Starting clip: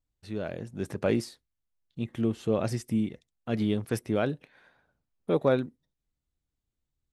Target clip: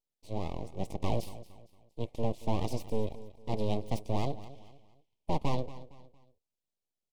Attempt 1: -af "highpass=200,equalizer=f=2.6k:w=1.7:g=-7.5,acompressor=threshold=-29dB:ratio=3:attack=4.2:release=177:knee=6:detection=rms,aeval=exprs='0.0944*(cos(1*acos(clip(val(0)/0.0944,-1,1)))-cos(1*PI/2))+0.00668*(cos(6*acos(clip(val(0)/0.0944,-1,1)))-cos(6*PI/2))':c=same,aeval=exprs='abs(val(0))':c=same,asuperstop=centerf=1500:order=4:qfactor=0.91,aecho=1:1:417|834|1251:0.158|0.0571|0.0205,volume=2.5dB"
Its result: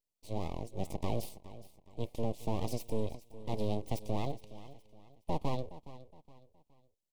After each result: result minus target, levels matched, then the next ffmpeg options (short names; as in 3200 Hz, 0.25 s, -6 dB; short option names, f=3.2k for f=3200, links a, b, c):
echo 0.187 s late; compressor: peak gain reduction +5 dB; 8000 Hz band +3.5 dB
-af "highpass=200,equalizer=f=2.6k:w=1.7:g=-7.5,acompressor=threshold=-29dB:ratio=3:attack=4.2:release=177:knee=6:detection=rms,aeval=exprs='0.0944*(cos(1*acos(clip(val(0)/0.0944,-1,1)))-cos(1*PI/2))+0.00668*(cos(6*acos(clip(val(0)/0.0944,-1,1)))-cos(6*PI/2))':c=same,aeval=exprs='abs(val(0))':c=same,asuperstop=centerf=1500:order=4:qfactor=0.91,aecho=1:1:230|460|690:0.158|0.0571|0.0205,volume=2.5dB"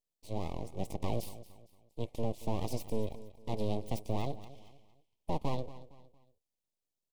compressor: peak gain reduction +5 dB; 8000 Hz band +3.5 dB
-af "highpass=200,equalizer=f=2.6k:w=1.7:g=-7.5,acompressor=threshold=-21.5dB:ratio=3:attack=4.2:release=177:knee=6:detection=rms,aeval=exprs='0.0944*(cos(1*acos(clip(val(0)/0.0944,-1,1)))-cos(1*PI/2))+0.00668*(cos(6*acos(clip(val(0)/0.0944,-1,1)))-cos(6*PI/2))':c=same,aeval=exprs='abs(val(0))':c=same,asuperstop=centerf=1500:order=4:qfactor=0.91,aecho=1:1:230|460|690:0.158|0.0571|0.0205,volume=2.5dB"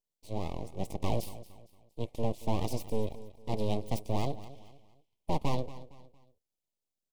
8000 Hz band +3.5 dB
-af "highpass=200,equalizer=f=2.6k:w=1.7:g=-7.5,acompressor=threshold=-21.5dB:ratio=3:attack=4.2:release=177:knee=6:detection=rms,aeval=exprs='0.0944*(cos(1*acos(clip(val(0)/0.0944,-1,1)))-cos(1*PI/2))+0.00668*(cos(6*acos(clip(val(0)/0.0944,-1,1)))-cos(6*PI/2))':c=same,aeval=exprs='abs(val(0))':c=same,asuperstop=centerf=1500:order=4:qfactor=0.91,highshelf=f=9.9k:g=-10,aecho=1:1:230|460|690:0.158|0.0571|0.0205,volume=2.5dB"